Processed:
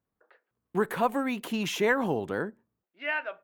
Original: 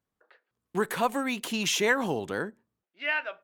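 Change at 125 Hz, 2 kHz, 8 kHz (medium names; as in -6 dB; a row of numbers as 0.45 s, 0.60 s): +1.5 dB, -2.0 dB, -9.0 dB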